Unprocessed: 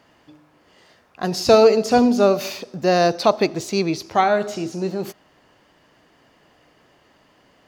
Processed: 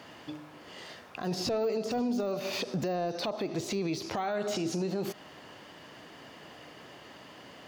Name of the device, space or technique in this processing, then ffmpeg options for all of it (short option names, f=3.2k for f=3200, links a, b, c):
broadcast voice chain: -af "highpass=88,deesser=0.85,acompressor=threshold=-30dB:ratio=5,equalizer=f=3.3k:t=o:w=0.79:g=3,alimiter=level_in=6dB:limit=-24dB:level=0:latency=1:release=62,volume=-6dB,volume=6.5dB"